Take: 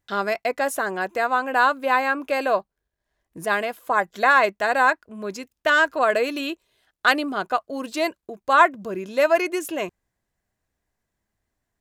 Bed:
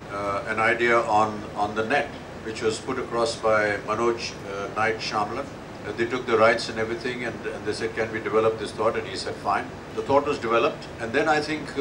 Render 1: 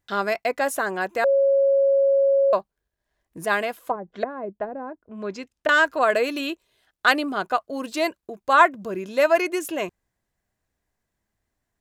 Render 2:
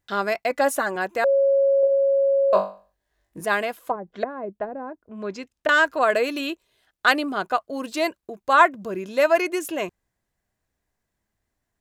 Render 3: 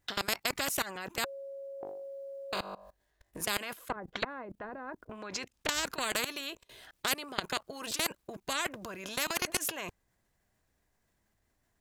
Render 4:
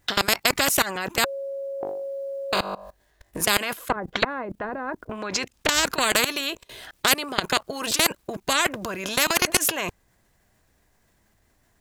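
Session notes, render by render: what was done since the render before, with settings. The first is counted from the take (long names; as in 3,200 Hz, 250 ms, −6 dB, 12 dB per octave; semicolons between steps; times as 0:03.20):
0:01.24–0:02.53: beep over 550 Hz −15 dBFS; 0:03.76–0:05.69: treble cut that deepens with the level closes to 320 Hz, closed at −17.5 dBFS
0:00.50–0:00.96: comb filter 3.5 ms, depth 63%; 0:01.81–0:03.41: flutter between parallel walls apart 3.5 metres, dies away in 0.37 s
output level in coarse steps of 23 dB; every bin compressed towards the loudest bin 4 to 1
level +11.5 dB; brickwall limiter −3 dBFS, peak gain reduction 2.5 dB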